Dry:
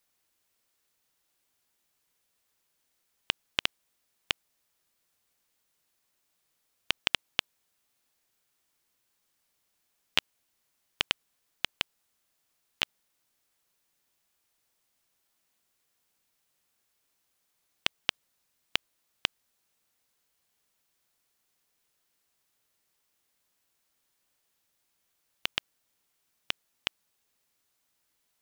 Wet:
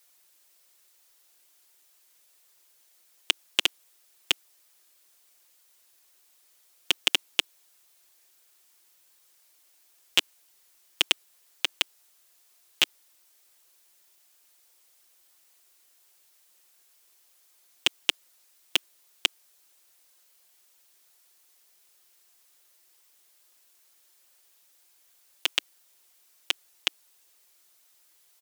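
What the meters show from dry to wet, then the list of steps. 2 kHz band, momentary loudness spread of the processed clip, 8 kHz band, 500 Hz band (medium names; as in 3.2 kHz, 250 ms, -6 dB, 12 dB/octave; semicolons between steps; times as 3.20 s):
+3.5 dB, 7 LU, +10.5 dB, +3.5 dB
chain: steep high-pass 310 Hz 36 dB/octave; treble shelf 3.5 kHz +7 dB; comb 5.6 ms, depth 52%; in parallel at -2 dB: level held to a coarse grid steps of 12 dB; on the sum: saturation -7.5 dBFS, distortion -8 dB; trim +2.5 dB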